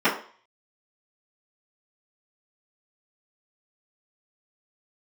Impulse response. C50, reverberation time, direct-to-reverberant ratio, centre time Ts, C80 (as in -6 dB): 8.0 dB, 0.45 s, -15.0 dB, 26 ms, 12.5 dB